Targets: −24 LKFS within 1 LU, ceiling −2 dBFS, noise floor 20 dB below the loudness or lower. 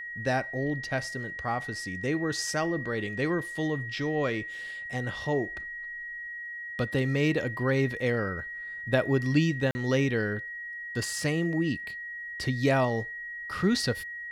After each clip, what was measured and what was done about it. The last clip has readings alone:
number of dropouts 1; longest dropout 40 ms; interfering tone 1,900 Hz; level of the tone −36 dBFS; integrated loudness −29.5 LKFS; sample peak −12.0 dBFS; target loudness −24.0 LKFS
→ repair the gap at 0:09.71, 40 ms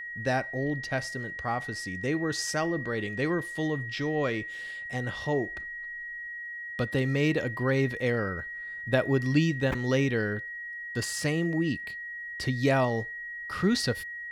number of dropouts 0; interfering tone 1,900 Hz; level of the tone −36 dBFS
→ notch filter 1,900 Hz, Q 30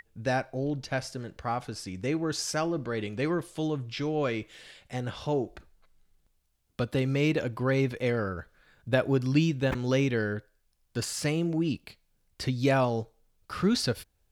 interfering tone none found; integrated loudness −29.5 LKFS; sample peak −12.5 dBFS; target loudness −24.0 LKFS
→ level +5.5 dB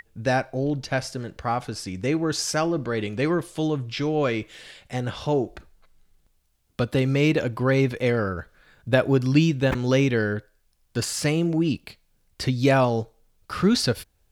integrated loudness −24.0 LKFS; sample peak −7.0 dBFS; background noise floor −66 dBFS

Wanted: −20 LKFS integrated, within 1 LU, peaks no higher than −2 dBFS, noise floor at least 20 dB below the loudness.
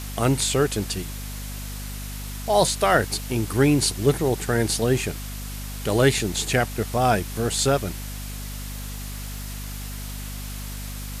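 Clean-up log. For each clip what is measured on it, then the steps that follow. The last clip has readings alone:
mains hum 50 Hz; hum harmonics up to 250 Hz; level of the hum −31 dBFS; background noise floor −33 dBFS; target noise floor −45 dBFS; integrated loudness −24.5 LKFS; sample peak −5.0 dBFS; target loudness −20.0 LKFS
→ hum removal 50 Hz, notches 5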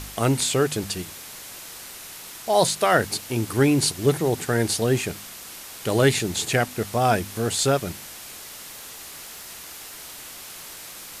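mains hum none found; background noise floor −40 dBFS; target noise floor −43 dBFS
→ noise reduction from a noise print 6 dB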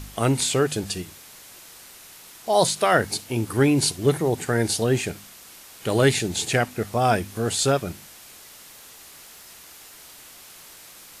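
background noise floor −46 dBFS; integrated loudness −22.5 LKFS; sample peak −5.0 dBFS; target loudness −20.0 LKFS
→ level +2.5 dB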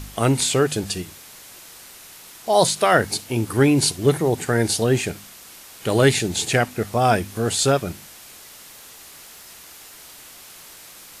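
integrated loudness −20.0 LKFS; sample peak −2.5 dBFS; background noise floor −44 dBFS

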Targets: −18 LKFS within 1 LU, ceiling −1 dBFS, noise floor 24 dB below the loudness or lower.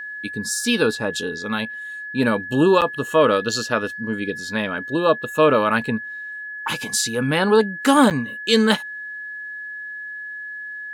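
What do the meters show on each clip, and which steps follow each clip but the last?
number of dropouts 2; longest dropout 8.0 ms; interfering tone 1,700 Hz; level of the tone −30 dBFS; integrated loudness −20.0 LKFS; sample peak −2.5 dBFS; target loudness −18.0 LKFS
→ repair the gap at 0:02.81/0:08.10, 8 ms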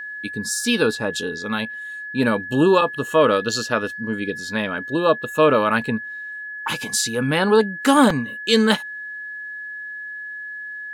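number of dropouts 0; interfering tone 1,700 Hz; level of the tone −30 dBFS
→ notch filter 1,700 Hz, Q 30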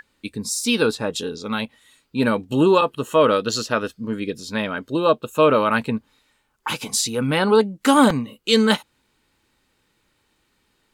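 interfering tone none found; integrated loudness −20.5 LKFS; sample peak −2.5 dBFS; target loudness −18.0 LKFS
→ level +2.5 dB
brickwall limiter −1 dBFS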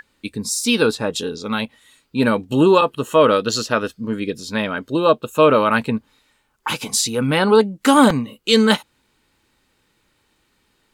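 integrated loudness −18.0 LKFS; sample peak −1.0 dBFS; background noise floor −65 dBFS

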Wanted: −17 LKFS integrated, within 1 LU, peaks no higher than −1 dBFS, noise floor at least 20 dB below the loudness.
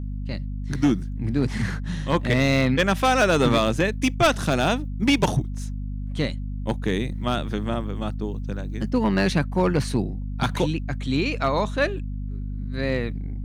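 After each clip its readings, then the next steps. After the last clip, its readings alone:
share of clipped samples 0.6%; peaks flattened at −12.5 dBFS; mains hum 50 Hz; hum harmonics up to 250 Hz; level of the hum −27 dBFS; integrated loudness −24.0 LKFS; sample peak −12.5 dBFS; target loudness −17.0 LKFS
→ clipped peaks rebuilt −12.5 dBFS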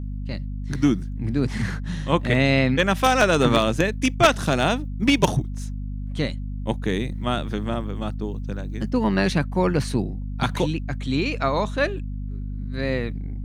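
share of clipped samples 0.0%; mains hum 50 Hz; hum harmonics up to 250 Hz; level of the hum −27 dBFS
→ hum removal 50 Hz, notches 5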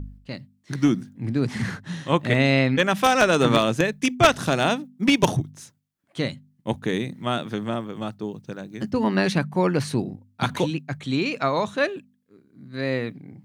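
mains hum none found; integrated loudness −23.5 LKFS; sample peak −3.0 dBFS; target loudness −17.0 LKFS
→ level +6.5 dB
brickwall limiter −1 dBFS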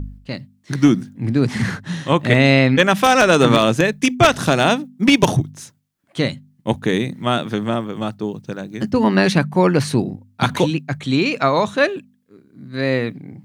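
integrated loudness −17.5 LKFS; sample peak −1.0 dBFS; background noise floor −59 dBFS

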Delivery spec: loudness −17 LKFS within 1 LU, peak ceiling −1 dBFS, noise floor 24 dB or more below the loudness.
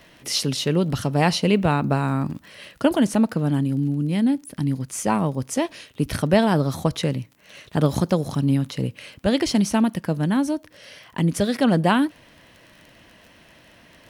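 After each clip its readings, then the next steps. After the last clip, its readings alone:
crackle rate 30 per second; integrated loudness −22.5 LKFS; sample peak −4.0 dBFS; target loudness −17.0 LKFS
→ click removal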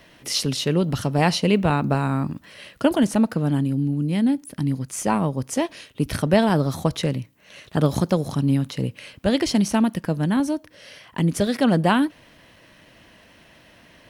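crackle rate 0.21 per second; integrated loudness −22.5 LKFS; sample peak −4.0 dBFS; target loudness −17.0 LKFS
→ level +5.5 dB
brickwall limiter −1 dBFS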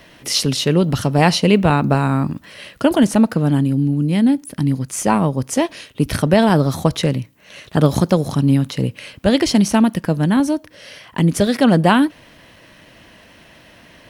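integrated loudness −17.0 LKFS; sample peak −1.0 dBFS; background noise floor −47 dBFS

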